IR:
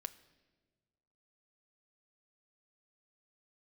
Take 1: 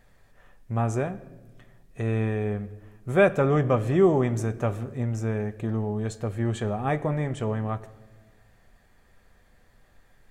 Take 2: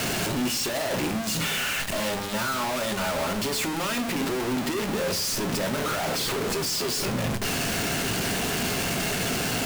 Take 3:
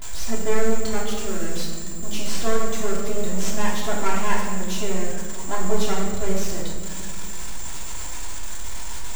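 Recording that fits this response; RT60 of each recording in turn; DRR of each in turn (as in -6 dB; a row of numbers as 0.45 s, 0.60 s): 1; no single decay rate, 0.60 s, 1.9 s; 9.5 dB, 7.0 dB, -5.0 dB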